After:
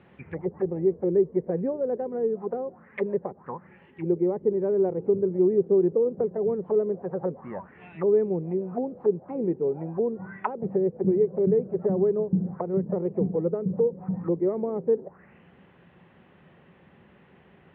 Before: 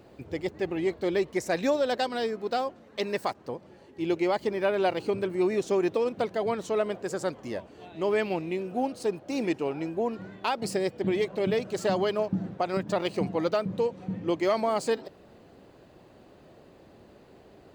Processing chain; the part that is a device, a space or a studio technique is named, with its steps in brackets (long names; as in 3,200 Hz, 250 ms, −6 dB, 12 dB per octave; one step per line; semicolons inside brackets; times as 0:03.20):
envelope filter bass rig (envelope-controlled low-pass 440–3,800 Hz down, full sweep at −26 dBFS; loudspeaker in its box 66–2,300 Hz, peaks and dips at 110 Hz −4 dB, 170 Hz +8 dB, 300 Hz −9 dB, 450 Hz −5 dB, 640 Hz −9 dB, 1,900 Hz +4 dB)